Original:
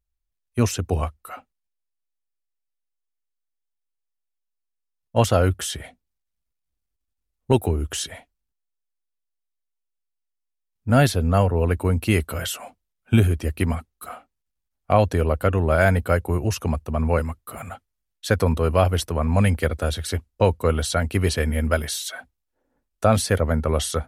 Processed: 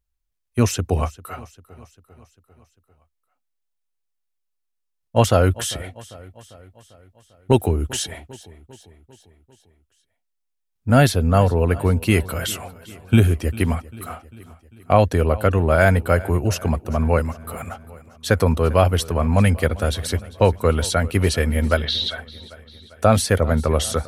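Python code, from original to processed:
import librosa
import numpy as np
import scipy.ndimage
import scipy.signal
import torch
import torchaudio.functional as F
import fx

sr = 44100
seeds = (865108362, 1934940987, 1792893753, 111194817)

p1 = fx.curve_eq(x, sr, hz=(2500.0, 3800.0, 7800.0), db=(0, 11, -27), at=(21.77, 22.18))
p2 = p1 + fx.echo_feedback(p1, sr, ms=397, feedback_pct=57, wet_db=-20, dry=0)
y = F.gain(torch.from_numpy(p2), 2.5).numpy()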